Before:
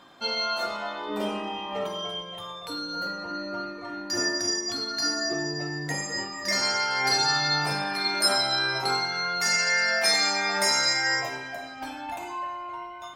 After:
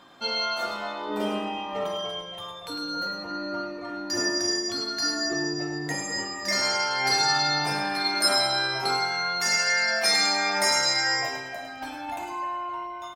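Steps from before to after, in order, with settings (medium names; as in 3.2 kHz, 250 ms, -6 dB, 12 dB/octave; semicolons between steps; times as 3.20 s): feedback delay 105 ms, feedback 32%, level -9 dB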